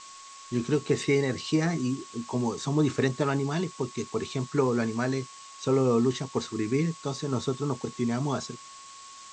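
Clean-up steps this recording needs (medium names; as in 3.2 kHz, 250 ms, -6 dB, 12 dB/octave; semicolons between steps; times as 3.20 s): band-stop 1.1 kHz, Q 30; noise reduction 26 dB, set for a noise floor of -47 dBFS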